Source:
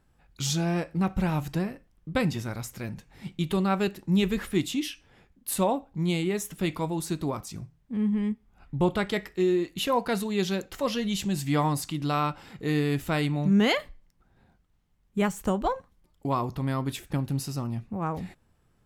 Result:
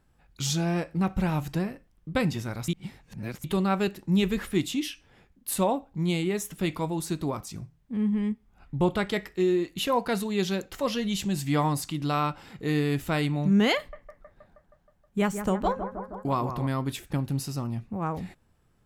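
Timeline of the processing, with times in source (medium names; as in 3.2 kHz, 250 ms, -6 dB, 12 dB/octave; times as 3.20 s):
2.68–3.44 s: reverse
13.77–16.67 s: bucket-brigade echo 158 ms, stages 2048, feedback 70%, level -9 dB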